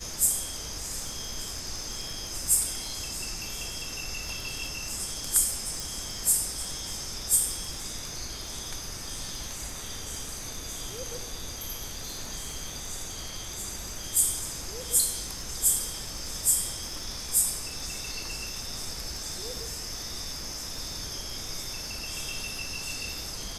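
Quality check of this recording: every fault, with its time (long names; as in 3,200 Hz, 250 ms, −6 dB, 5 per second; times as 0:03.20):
surface crackle 18 per second −37 dBFS
0:05.80: click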